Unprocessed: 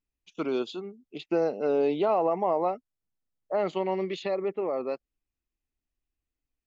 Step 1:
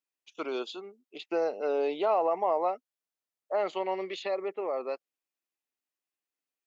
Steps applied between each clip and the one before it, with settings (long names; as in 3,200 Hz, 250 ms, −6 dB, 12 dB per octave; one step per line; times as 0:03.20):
high-pass filter 470 Hz 12 dB per octave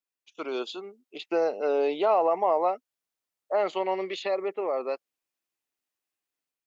automatic gain control gain up to 6 dB
level −2.5 dB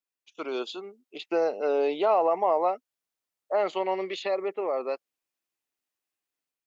no processing that can be heard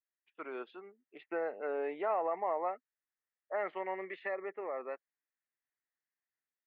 transistor ladder low-pass 2,000 Hz, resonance 70%